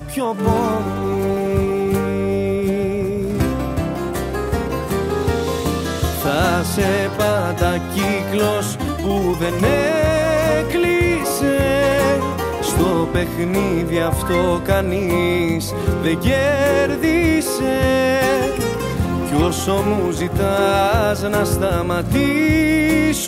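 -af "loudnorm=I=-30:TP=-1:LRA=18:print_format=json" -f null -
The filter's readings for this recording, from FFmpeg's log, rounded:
"input_i" : "-18.0",
"input_tp" : "-4.9",
"input_lra" : "3.2",
"input_thresh" : "-28.0",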